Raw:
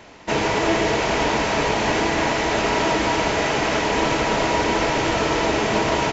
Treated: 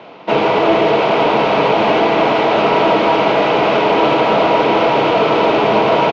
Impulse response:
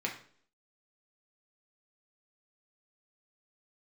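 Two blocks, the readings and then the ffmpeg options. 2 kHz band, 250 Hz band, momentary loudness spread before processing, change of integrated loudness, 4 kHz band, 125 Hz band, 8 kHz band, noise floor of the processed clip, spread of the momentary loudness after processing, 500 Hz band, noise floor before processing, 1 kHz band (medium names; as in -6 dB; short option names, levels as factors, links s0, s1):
+3.0 dB, +6.0 dB, 1 LU, +7.0 dB, +3.5 dB, +2.0 dB, no reading, -21 dBFS, 1 LU, +9.5 dB, -25 dBFS, +8.5 dB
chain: -af "highpass=f=140:w=0.5412,highpass=f=140:w=1.3066,equalizer=f=250:t=q:w=4:g=-3,equalizer=f=490:t=q:w=4:g=4,equalizer=f=700:t=q:w=4:g=4,equalizer=f=1200:t=q:w=4:g=3,equalizer=f=1800:t=q:w=4:g=-10,lowpass=f=3600:w=0.5412,lowpass=f=3600:w=1.3066,aecho=1:1:1090:0.355,acontrast=79"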